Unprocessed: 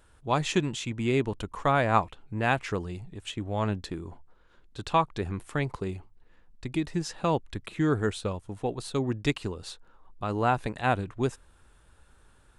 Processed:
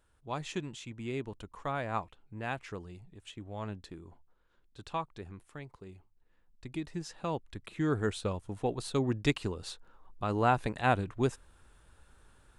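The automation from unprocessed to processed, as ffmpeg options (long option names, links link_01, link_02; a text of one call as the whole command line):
ffmpeg -i in.wav -af "volume=5.5dB,afade=type=out:start_time=4.88:duration=0.86:silence=0.446684,afade=type=in:start_time=5.74:duration=1:silence=0.334965,afade=type=in:start_time=7.49:duration=0.94:silence=0.446684" out.wav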